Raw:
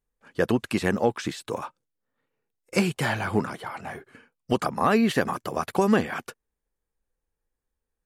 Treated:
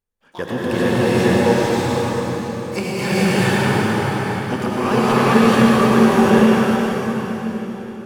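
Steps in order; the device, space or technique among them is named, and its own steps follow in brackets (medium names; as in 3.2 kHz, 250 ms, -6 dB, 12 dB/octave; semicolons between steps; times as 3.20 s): dynamic bell 670 Hz, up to -5 dB, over -45 dBFS, Q 6.4; gated-style reverb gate 470 ms rising, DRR -6.5 dB; shimmer-style reverb (harmony voices +12 st -11 dB; reverberation RT60 4.6 s, pre-delay 79 ms, DRR -3 dB); trim -3 dB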